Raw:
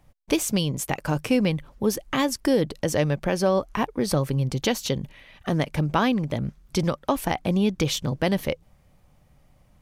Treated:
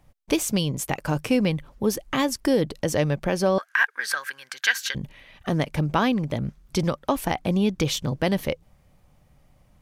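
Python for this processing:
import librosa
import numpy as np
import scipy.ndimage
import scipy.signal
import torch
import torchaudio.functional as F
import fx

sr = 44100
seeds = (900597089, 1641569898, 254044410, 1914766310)

y = fx.highpass_res(x, sr, hz=1600.0, q=15.0, at=(3.58, 4.95))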